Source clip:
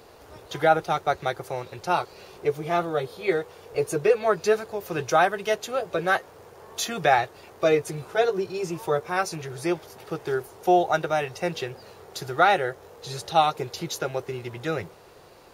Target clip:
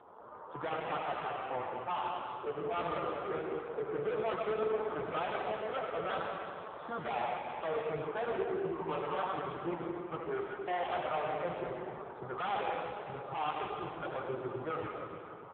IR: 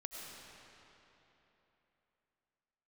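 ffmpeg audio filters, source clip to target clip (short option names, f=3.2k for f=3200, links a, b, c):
-filter_complex "[0:a]asettb=1/sr,asplit=3[a][b][c];[a]atrim=end=9.324[d];[b]atrim=start=9.32:end=11.46,asetpts=PTS-STARTPTS,afade=t=in:d=0.004:c=qsin,afade=t=out:st=2.136:d=0.004:c=qsin,agate=range=-33dB:threshold=-37dB:ratio=3:detection=peak[e];[c]atrim=start=11.456[f];[d][e]acrossfade=d=0.004:c1=hsin:c2=qsin[g];[g][f]acrossfade=d=0.004:c1=qsin:c2=hsin,firequalizer=gain_entry='entry(160,0);entry(1200,14);entry(2200,-16)':delay=0.05:min_phase=1,aeval=exprs='(tanh(14.1*val(0)+0.25)-tanh(0.25))/14.1':c=same[h];[1:a]atrim=start_sample=2205,asetrate=61740,aresample=44100[i];[h][i]afir=irnorm=-1:irlink=0" -ar 8000 -c:a libopencore_amrnb -b:a 5150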